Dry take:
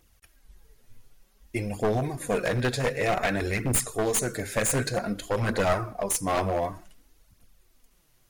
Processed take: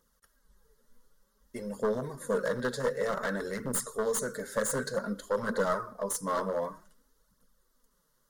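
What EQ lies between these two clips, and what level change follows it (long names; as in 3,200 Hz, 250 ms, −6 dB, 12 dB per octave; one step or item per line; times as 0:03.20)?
low-shelf EQ 150 Hz −10.5 dB
high-shelf EQ 4,100 Hz −7 dB
phaser with its sweep stopped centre 490 Hz, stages 8
0.0 dB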